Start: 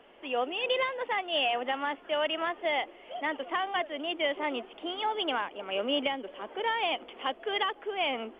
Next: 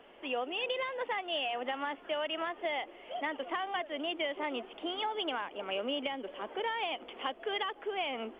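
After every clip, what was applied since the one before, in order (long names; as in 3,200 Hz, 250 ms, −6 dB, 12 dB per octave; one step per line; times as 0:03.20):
downward compressor, threshold −31 dBFS, peak gain reduction 7.5 dB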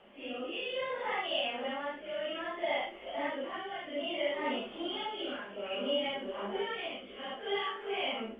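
random phases in long frames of 200 ms
rotating-speaker cabinet horn 0.6 Hz
on a send at −6.5 dB: convolution reverb, pre-delay 3 ms
on the sum: level +1.5 dB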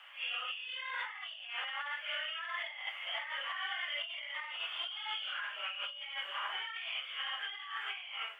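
high-pass filter 1,200 Hz 24 dB per octave
compressor whose output falls as the input rises −47 dBFS, ratio −1
level +6 dB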